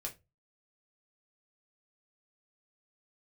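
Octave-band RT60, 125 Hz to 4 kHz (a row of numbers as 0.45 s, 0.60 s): 0.45 s, 0.25 s, 0.25 s, 0.20 s, 0.20 s, 0.20 s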